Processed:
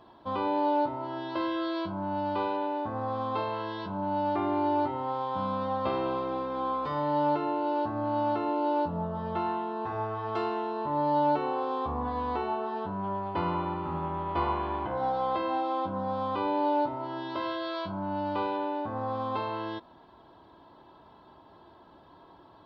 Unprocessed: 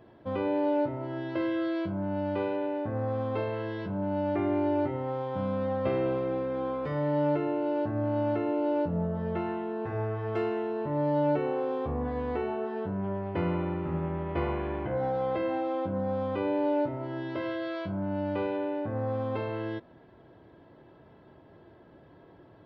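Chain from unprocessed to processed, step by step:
octave-band graphic EQ 125/500/1,000/2,000/4,000 Hz −8/−6/+12/−8/+11 dB

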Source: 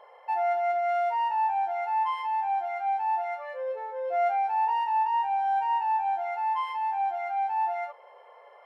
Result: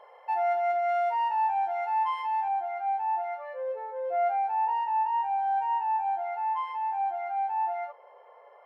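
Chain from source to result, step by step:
high-shelf EQ 2,400 Hz −2 dB, from 0:02.48 −11.5 dB

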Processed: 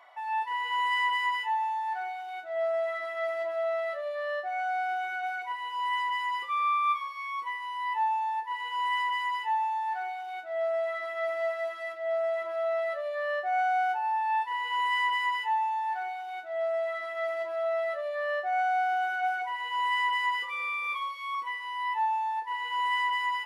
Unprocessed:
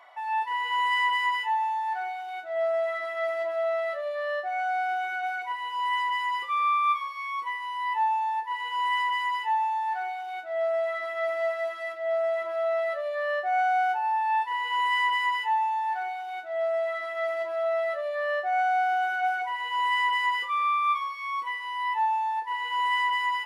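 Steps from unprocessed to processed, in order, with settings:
0:20.48–0:21.35: comb filter 2.1 ms, depth 100%
level −2.5 dB

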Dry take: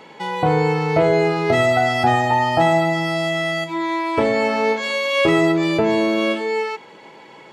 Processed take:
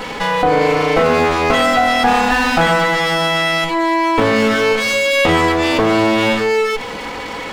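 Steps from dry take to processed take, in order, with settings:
lower of the sound and its delayed copy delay 4 ms
envelope flattener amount 50%
level +3.5 dB

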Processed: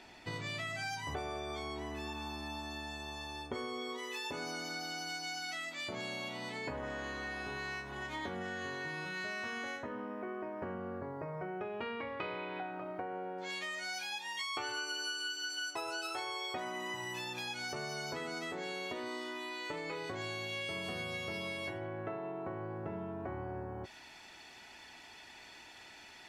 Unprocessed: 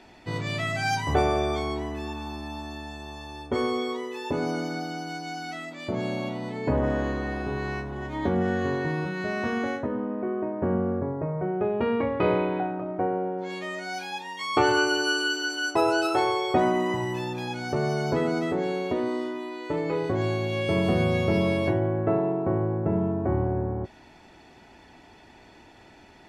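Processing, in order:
tilt shelving filter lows −4 dB, from 0:03.97 lows −9.5 dB
downward compressor 6 to 1, threshold −34 dBFS, peak gain reduction 16 dB
level −3.5 dB

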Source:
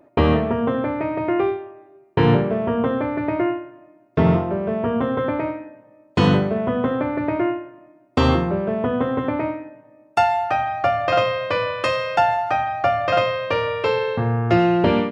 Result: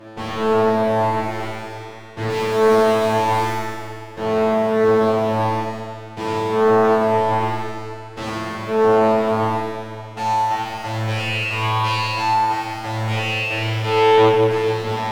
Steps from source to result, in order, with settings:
compressor on every frequency bin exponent 0.6
leveller curve on the samples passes 5
0:02.29–0:03.52: high-shelf EQ 2,400 Hz +10.5 dB
tuned comb filter 110 Hz, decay 1.8 s, mix 100%
tape delay 228 ms, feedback 61%, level −14 dB
highs frequency-modulated by the lows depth 0.46 ms
level +1 dB

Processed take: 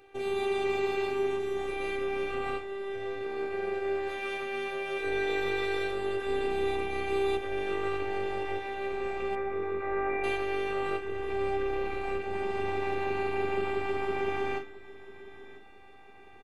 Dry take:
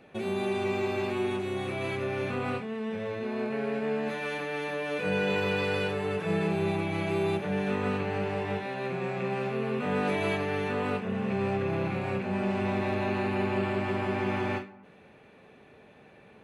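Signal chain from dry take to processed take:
0:09.35–0:10.24: elliptic low-pass filter 2,300 Hz
phases set to zero 395 Hz
repeating echo 995 ms, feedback 53%, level −17.5 dB
level +1 dB

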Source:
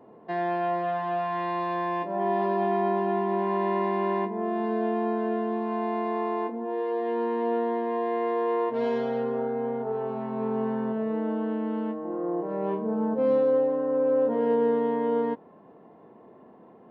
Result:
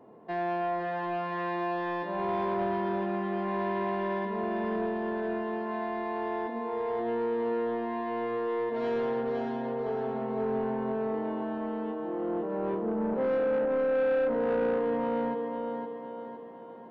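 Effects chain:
feedback echo with a high-pass in the loop 512 ms, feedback 50%, high-pass 190 Hz, level −4.5 dB
soft clipping −21 dBFS, distortion −14 dB
level −2 dB

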